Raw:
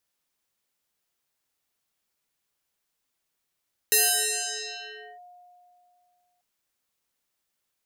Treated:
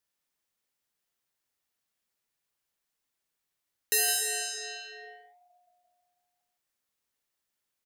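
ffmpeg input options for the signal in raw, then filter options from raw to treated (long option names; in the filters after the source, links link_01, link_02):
-f lavfi -i "aevalsrc='0.158*pow(10,-3*t/2.64)*sin(2*PI*715*t+12*clip(1-t/1.27,0,1)*sin(2*PI*1.6*715*t))':duration=2.49:sample_rate=44100"
-filter_complex "[0:a]equalizer=frequency=1800:width=5.8:gain=2.5,flanger=delay=4.5:depth=4.5:regen=-90:speed=0.92:shape=triangular,asplit=2[link_01][link_02];[link_02]aecho=0:1:163:0.335[link_03];[link_01][link_03]amix=inputs=2:normalize=0"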